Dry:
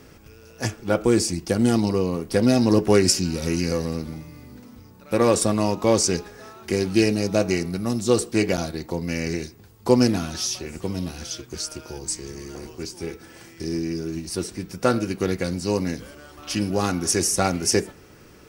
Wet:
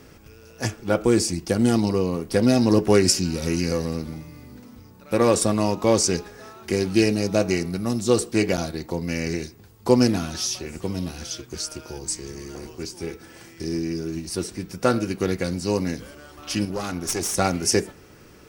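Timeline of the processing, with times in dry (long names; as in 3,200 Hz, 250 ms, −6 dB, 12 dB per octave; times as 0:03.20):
0:16.65–0:17.35: tube saturation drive 16 dB, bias 0.75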